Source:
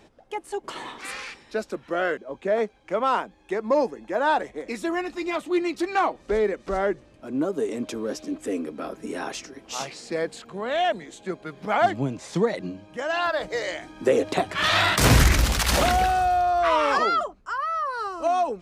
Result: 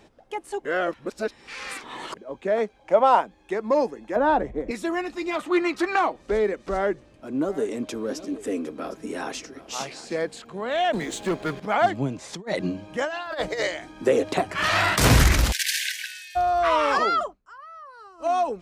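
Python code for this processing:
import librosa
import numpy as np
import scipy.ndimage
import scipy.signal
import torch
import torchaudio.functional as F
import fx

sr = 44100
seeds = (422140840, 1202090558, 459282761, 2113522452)

y = fx.band_shelf(x, sr, hz=710.0, db=9.0, octaves=1.0, at=(2.79, 3.21))
y = fx.tilt_eq(y, sr, slope=-4.0, at=(4.16, 4.71))
y = fx.peak_eq(y, sr, hz=1300.0, db=11.5, octaves=1.5, at=(5.39, 5.96))
y = fx.echo_single(y, sr, ms=759, db=-16.5, at=(7.44, 10.31), fade=0.02)
y = fx.leveller(y, sr, passes=3, at=(10.93, 11.6))
y = fx.over_compress(y, sr, threshold_db=-29.0, ratio=-0.5, at=(12.33, 13.67), fade=0.02)
y = fx.peak_eq(y, sr, hz=3600.0, db=-10.0, octaves=0.27, at=(14.37, 14.96))
y = fx.brickwall_highpass(y, sr, low_hz=1500.0, at=(15.51, 16.35), fade=0.02)
y = fx.edit(y, sr, fx.reverse_span(start_s=0.65, length_s=1.52),
    fx.fade_down_up(start_s=17.26, length_s=1.04, db=-16.0, fade_s=0.12), tone=tone)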